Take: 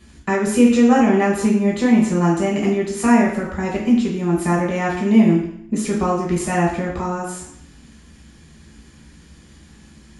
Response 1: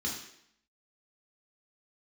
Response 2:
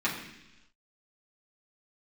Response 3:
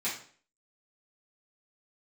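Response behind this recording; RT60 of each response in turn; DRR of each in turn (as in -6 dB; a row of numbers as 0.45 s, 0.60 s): 1; 0.70 s, 0.95 s, 0.50 s; -3.0 dB, -7.5 dB, -10.5 dB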